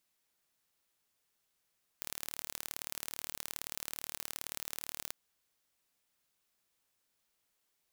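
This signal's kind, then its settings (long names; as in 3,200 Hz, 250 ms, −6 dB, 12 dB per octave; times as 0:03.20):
impulse train 37.6 per second, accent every 2, −10.5 dBFS 3.09 s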